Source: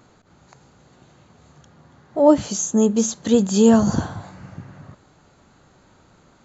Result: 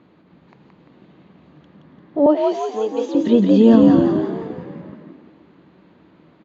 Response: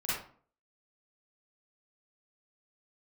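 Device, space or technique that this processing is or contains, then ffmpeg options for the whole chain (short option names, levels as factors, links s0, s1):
frequency-shifting delay pedal into a guitar cabinet: -filter_complex "[0:a]asplit=8[s0][s1][s2][s3][s4][s5][s6][s7];[s1]adelay=172,afreqshift=56,volume=0.631[s8];[s2]adelay=344,afreqshift=112,volume=0.327[s9];[s3]adelay=516,afreqshift=168,volume=0.17[s10];[s4]adelay=688,afreqshift=224,volume=0.0891[s11];[s5]adelay=860,afreqshift=280,volume=0.0462[s12];[s6]adelay=1032,afreqshift=336,volume=0.024[s13];[s7]adelay=1204,afreqshift=392,volume=0.0124[s14];[s0][s8][s9][s10][s11][s12][s13][s14]amix=inputs=8:normalize=0,highpass=86,equalizer=f=110:t=q:w=4:g=-7,equalizer=f=180:t=q:w=4:g=6,equalizer=f=310:t=q:w=4:g=7,equalizer=f=780:t=q:w=4:g=-5,equalizer=f=1400:t=q:w=4:g=-7,lowpass=f=3400:w=0.5412,lowpass=f=3400:w=1.3066,asettb=1/sr,asplit=3[s15][s16][s17];[s15]atrim=end=2.264[s18];[s16]atrim=start=2.26:end=3.15,asetpts=PTS-STARTPTS,afade=t=in:d=0.004:c=qsin,afade=t=out:st=0.886:d=0.004:c=qsin,highpass=f=400:w=0.5412,highpass=f=400:w=1.3066[s19];[s17]atrim=start=3.146[s20];[s18][s19]acrossfade=d=0.004:c1=hsin:c2=qsin[s21];[s21][s20]acrossfade=d=0.004:c1=qsin:c2=hsin"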